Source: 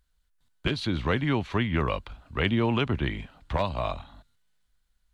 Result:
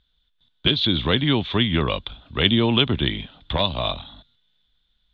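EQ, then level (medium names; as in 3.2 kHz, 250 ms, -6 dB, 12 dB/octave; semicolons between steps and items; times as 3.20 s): resonant low-pass 3.5 kHz, resonance Q 14; peaking EQ 240 Hz +6 dB 2.9 oct; 0.0 dB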